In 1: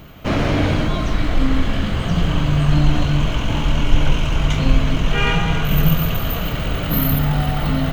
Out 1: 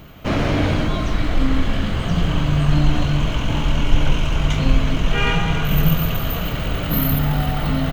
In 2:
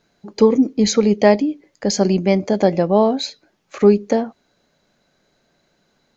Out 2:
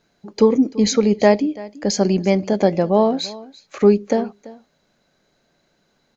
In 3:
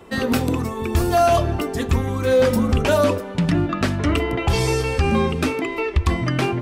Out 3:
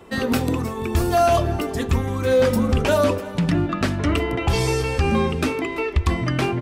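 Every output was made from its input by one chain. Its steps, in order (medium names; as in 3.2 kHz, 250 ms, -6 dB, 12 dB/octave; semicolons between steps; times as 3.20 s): delay 337 ms -19.5 dB; trim -1 dB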